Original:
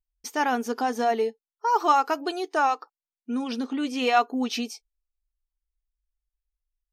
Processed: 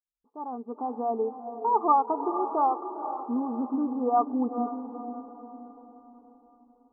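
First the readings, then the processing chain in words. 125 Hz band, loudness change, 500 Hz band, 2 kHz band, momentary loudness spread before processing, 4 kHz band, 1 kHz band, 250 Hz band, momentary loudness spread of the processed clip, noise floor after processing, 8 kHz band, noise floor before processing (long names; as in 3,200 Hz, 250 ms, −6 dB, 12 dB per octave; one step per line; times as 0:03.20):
can't be measured, −2.5 dB, −2.5 dB, below −30 dB, 10 LU, below −40 dB, −1.5 dB, −0.5 dB, 17 LU, −67 dBFS, below −40 dB, below −85 dBFS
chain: fade in at the beginning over 1.52 s
Chebyshev low-pass with heavy ripple 1,200 Hz, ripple 3 dB
feedback delay with all-pass diffusion 472 ms, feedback 47%, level −9 dB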